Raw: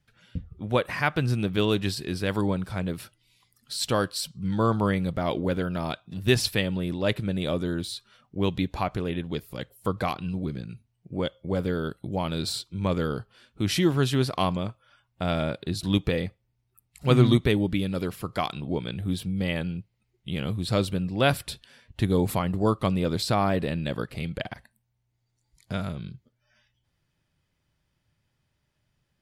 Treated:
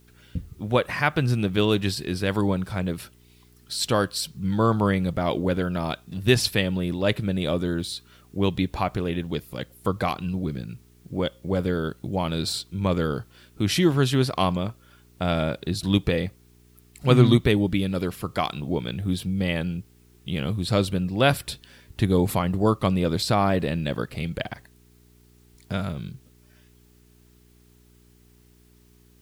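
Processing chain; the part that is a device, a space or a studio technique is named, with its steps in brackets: video cassette with head-switching buzz (mains buzz 60 Hz, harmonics 7, -59 dBFS -4 dB/octave; white noise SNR 39 dB); trim +2.5 dB

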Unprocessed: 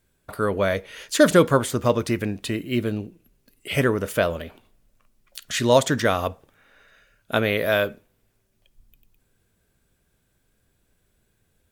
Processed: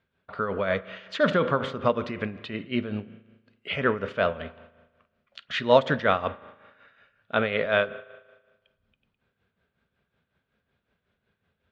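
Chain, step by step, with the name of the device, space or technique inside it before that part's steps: combo amplifier with spring reverb and tremolo (spring tank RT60 1.3 s, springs 37 ms, chirp 35 ms, DRR 14.5 dB; tremolo 5.4 Hz, depth 62%; cabinet simulation 95–3600 Hz, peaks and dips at 120 Hz -6 dB, 320 Hz -9 dB, 1.3 kHz +4 dB)

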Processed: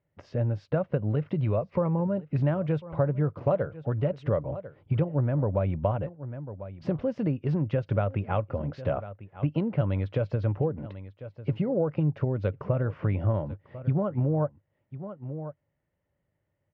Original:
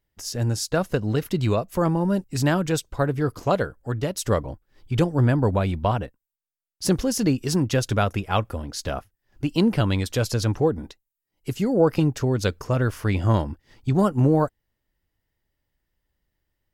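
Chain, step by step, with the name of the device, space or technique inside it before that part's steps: 1.61–2.07 s: rippled EQ curve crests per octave 0.86, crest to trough 8 dB; delay 1046 ms -22.5 dB; bass amplifier (compression 5:1, threshold -28 dBFS, peak gain reduction 14 dB; cabinet simulation 87–2400 Hz, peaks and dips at 100 Hz +8 dB, 150 Hz +9 dB, 570 Hz +10 dB, 1.7 kHz -4 dB)

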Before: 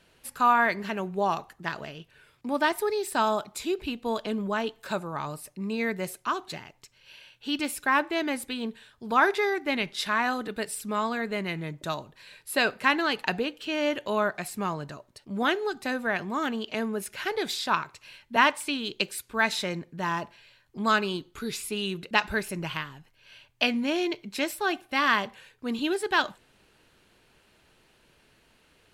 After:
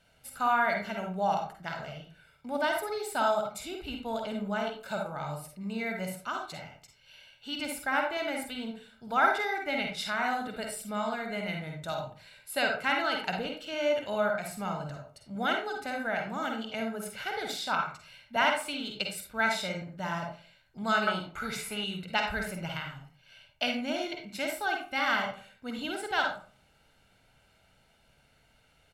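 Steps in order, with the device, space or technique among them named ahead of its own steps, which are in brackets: microphone above a desk (comb 1.4 ms, depth 58%; reverberation RT60 0.45 s, pre-delay 44 ms, DRR 1.5 dB); 21.07–21.84 s: high-order bell 1.1 kHz +10.5 dB 2.3 oct; trim -6.5 dB

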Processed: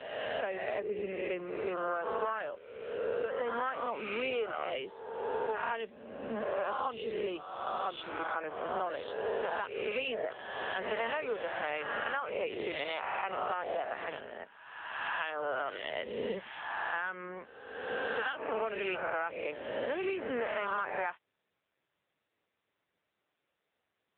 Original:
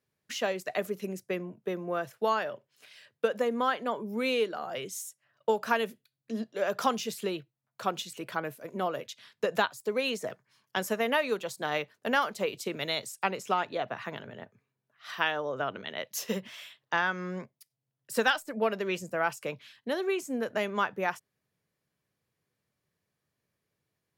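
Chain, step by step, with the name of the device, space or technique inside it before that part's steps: reverse spectral sustain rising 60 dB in 1.32 s; voicemail (band-pass 340–3300 Hz; compression 10:1, threshold -29 dBFS, peak gain reduction 12 dB; AMR-NB 6.7 kbps 8 kHz)

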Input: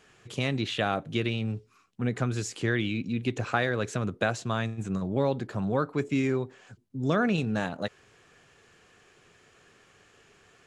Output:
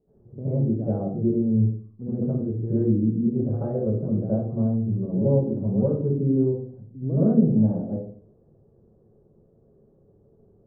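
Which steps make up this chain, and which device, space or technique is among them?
next room (low-pass 500 Hz 24 dB/octave; reverberation RT60 0.45 s, pre-delay 69 ms, DRR -12.5 dB); 3.80–5.03 s: distance through air 330 m; trim -5.5 dB

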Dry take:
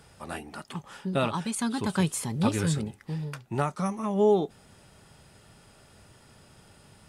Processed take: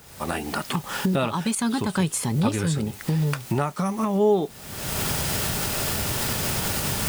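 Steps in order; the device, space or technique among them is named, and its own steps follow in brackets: cheap recorder with automatic gain (white noise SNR 25 dB; recorder AGC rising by 44 dB/s); trim +2 dB

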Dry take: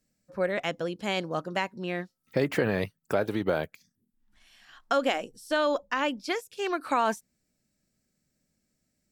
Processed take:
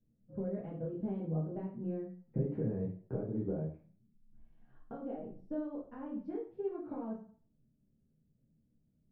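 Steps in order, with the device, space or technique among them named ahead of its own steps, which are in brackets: television next door (compression 5:1, threshold -33 dBFS, peak gain reduction 11.5 dB; low-pass 250 Hz 12 dB/octave; reverberation RT60 0.45 s, pre-delay 5 ms, DRR -6.5 dB); trim +1.5 dB

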